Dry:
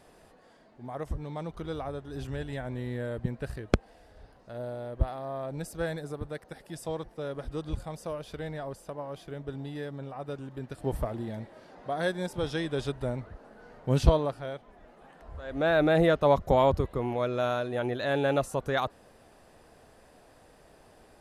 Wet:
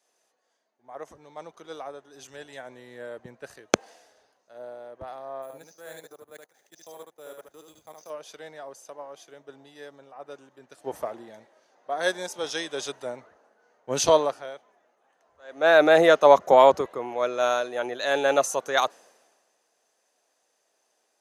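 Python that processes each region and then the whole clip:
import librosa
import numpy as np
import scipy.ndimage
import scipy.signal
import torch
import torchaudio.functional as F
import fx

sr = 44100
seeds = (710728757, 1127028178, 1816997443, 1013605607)

y = fx.chain(x, sr, fx.resample_bad(factor=4, down='filtered', up='hold'),
    fx.level_steps(step_db=19),
    fx.echo_single(ms=74, db=-4.0), at=(5.42, 8.1))
y = scipy.signal.sosfilt(scipy.signal.butter(2, 460.0, 'highpass', fs=sr, output='sos'), y)
y = fx.peak_eq(y, sr, hz=6300.0, db=13.5, octaves=0.27)
y = fx.band_widen(y, sr, depth_pct=70)
y = F.gain(torch.from_numpy(y), 3.0).numpy()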